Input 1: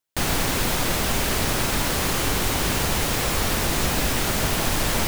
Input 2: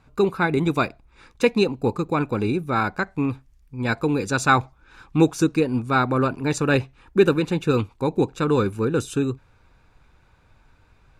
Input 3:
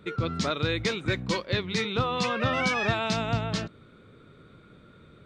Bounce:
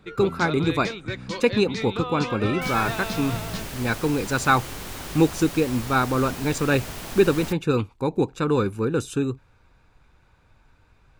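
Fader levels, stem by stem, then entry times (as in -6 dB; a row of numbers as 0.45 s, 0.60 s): -12.5 dB, -1.5 dB, -3.5 dB; 2.45 s, 0.00 s, 0.00 s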